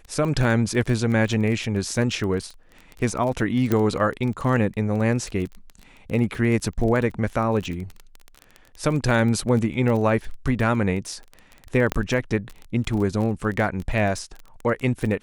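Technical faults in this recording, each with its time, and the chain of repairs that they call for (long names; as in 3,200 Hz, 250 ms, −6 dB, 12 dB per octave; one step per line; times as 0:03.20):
surface crackle 21 per second −28 dBFS
0:03.72: click −9 dBFS
0:11.92: click −8 dBFS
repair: click removal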